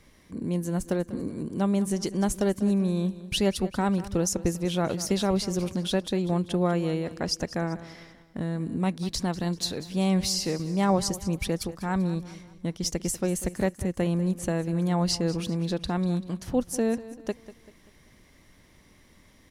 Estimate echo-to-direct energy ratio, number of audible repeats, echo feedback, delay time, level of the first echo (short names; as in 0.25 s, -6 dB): -15.0 dB, 3, 44%, 0.194 s, -16.0 dB